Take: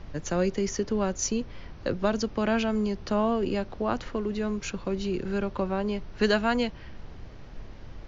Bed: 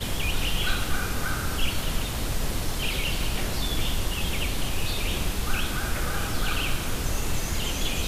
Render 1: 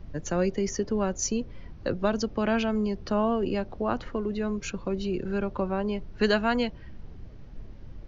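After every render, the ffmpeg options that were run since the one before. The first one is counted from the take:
-af "afftdn=nr=9:nf=-44"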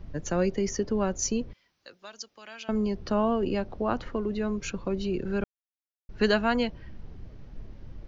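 -filter_complex "[0:a]asettb=1/sr,asplit=3[a][b][c];[a]atrim=end=1.534[d];[b]atrim=start=1.53:end=2.69,asetpts=PTS-STARTPTS,afade=t=in:d=0.004:c=qsin,afade=t=out:st=1.156:d=0.004:c=qsin,aderivative[e];[c]atrim=start=2.686[f];[d][e]acrossfade=d=0.004:c1=hsin:c2=qsin[g];[g][f]acrossfade=d=0.004:c1=qsin:c2=hsin,asplit=3[h][i][j];[h]atrim=end=5.44,asetpts=PTS-STARTPTS,afade=t=out:st=5.436:d=0.004:c=hsin[k];[i]atrim=start=5.44:end=6.09,asetpts=PTS-STARTPTS,volume=0[l];[j]atrim=start=6.09,asetpts=PTS-STARTPTS,afade=t=in:d=0.004:c=hsin[m];[k][l][m]concat=n=3:v=0:a=1"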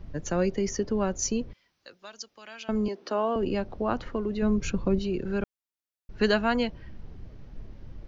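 -filter_complex "[0:a]asettb=1/sr,asplit=3[a][b][c];[a]atrim=end=2.884[d];[b]atrim=start=2.88:end=3.36,asetpts=PTS-STARTPTS,afade=t=in:d=0.004:c=qsin,afade=t=out:st=0.476:d=0.004:c=qsin,highpass=f=280:w=0.5412,highpass=f=280:w=1.3066[e];[c]atrim=start=3.356[f];[d][e]acrossfade=d=0.004:c1=hsin:c2=qsin[g];[g][f]acrossfade=d=0.004:c1=qsin:c2=hsin,asettb=1/sr,asplit=3[h][i][j];[h]atrim=end=4.424[k];[i]atrim=start=4.42:end=4.99,asetpts=PTS-STARTPTS,afade=t=in:d=0.004:c=qsin,afade=t=out:st=0.566:d=0.004:c=qsin,lowshelf=f=320:g=9[l];[j]atrim=start=4.986[m];[k][l]acrossfade=d=0.004:c1=hsin:c2=qsin[n];[n][m]acrossfade=d=0.004:c1=qsin:c2=hsin"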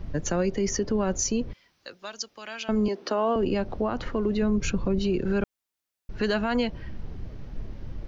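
-af "acontrast=65,alimiter=limit=-17dB:level=0:latency=1:release=112"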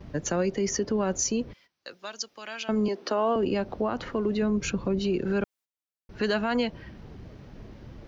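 -af "highpass=f=140:p=1,agate=range=-13dB:threshold=-54dB:ratio=16:detection=peak"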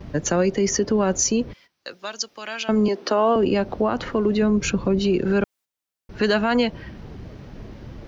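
-af "volume=6.5dB"

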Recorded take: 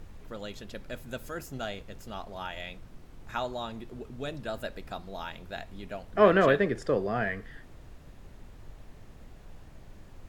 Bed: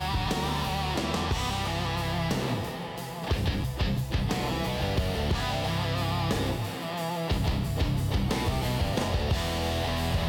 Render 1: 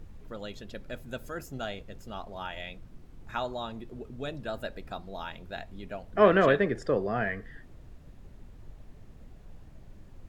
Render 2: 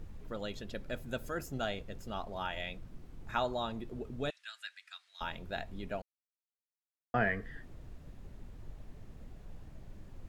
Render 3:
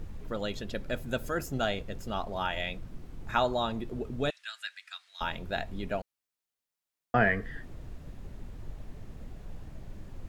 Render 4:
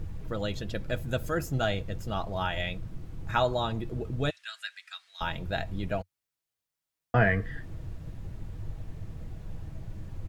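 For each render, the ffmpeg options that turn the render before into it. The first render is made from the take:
-af "afftdn=nr=6:nf=-51"
-filter_complex "[0:a]asettb=1/sr,asplit=3[a][b][c];[a]atrim=end=4.304[d];[b]atrim=start=4.3:end=5.21,asetpts=PTS-STARTPTS,afade=t=in:d=0.004:c=qsin,afade=t=out:st=0.906:d=0.004:c=qsin,asuperpass=centerf=4400:order=8:qfactor=0.51[e];[c]atrim=start=5.206[f];[d][e]acrossfade=d=0.004:c1=hsin:c2=qsin[g];[g][f]acrossfade=d=0.004:c1=qsin:c2=hsin,asplit=3[h][i][j];[h]atrim=end=6.02,asetpts=PTS-STARTPTS,afade=t=out:st=6.016:d=0.004:c=hsin[k];[i]atrim=start=6.02:end=7.14,asetpts=PTS-STARTPTS,volume=0[l];[j]atrim=start=7.14,asetpts=PTS-STARTPTS,afade=t=in:d=0.004:c=hsin[m];[k][l][m]concat=n=3:v=0:a=1"
-af "volume=6dB"
-af "equalizer=f=92:t=o:w=0.83:g=13,aecho=1:1:6.2:0.36"

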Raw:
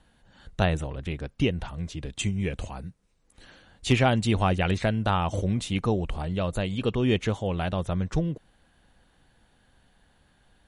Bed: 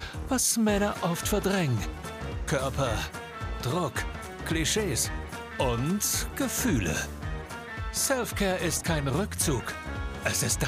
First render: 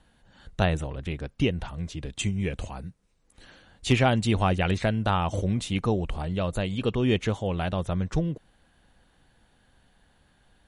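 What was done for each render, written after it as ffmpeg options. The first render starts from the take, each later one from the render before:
-af anull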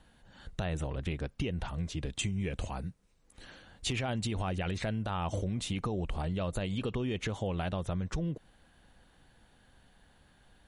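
-af "alimiter=limit=-20dB:level=0:latency=1:release=43,acompressor=threshold=-30dB:ratio=4"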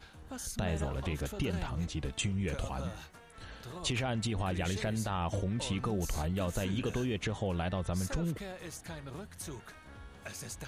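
-filter_complex "[1:a]volume=-16.5dB[a];[0:a][a]amix=inputs=2:normalize=0"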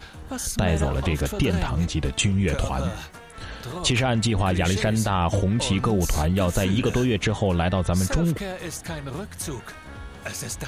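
-af "volume=11.5dB"

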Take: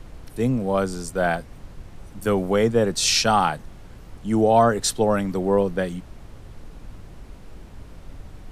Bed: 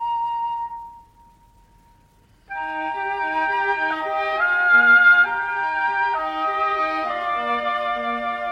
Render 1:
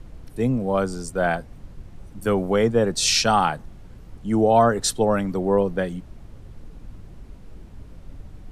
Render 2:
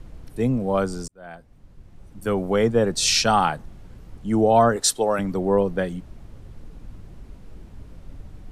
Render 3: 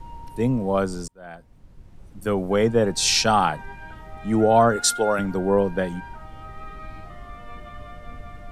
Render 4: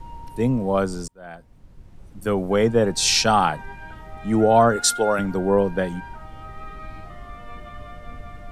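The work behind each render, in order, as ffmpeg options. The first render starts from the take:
-af "afftdn=nr=6:nf=-43"
-filter_complex "[0:a]asettb=1/sr,asplit=3[a][b][c];[a]atrim=end=4.764[d];[b]atrim=start=4.76:end=5.19,asetpts=PTS-STARTPTS,afade=t=in:d=0.004:c=qsin,afade=t=out:st=0.426:d=0.004:c=qsin,bass=f=250:g=-13,treble=f=4k:g=4[e];[c]atrim=start=5.186[f];[d][e]acrossfade=d=0.004:c1=hsin:c2=qsin[g];[g][f]acrossfade=d=0.004:c1=qsin:c2=hsin,asplit=2[h][i];[h]atrim=end=1.08,asetpts=PTS-STARTPTS,afade=t=out:st=1.076:d=0.004:c=hsin[j];[i]atrim=start=1.08,asetpts=PTS-STARTPTS,afade=t=in:d=1.59[k];[j][k]concat=n=2:v=0:a=1"
-filter_complex "[1:a]volume=-20dB[a];[0:a][a]amix=inputs=2:normalize=0"
-af "volume=1dB"

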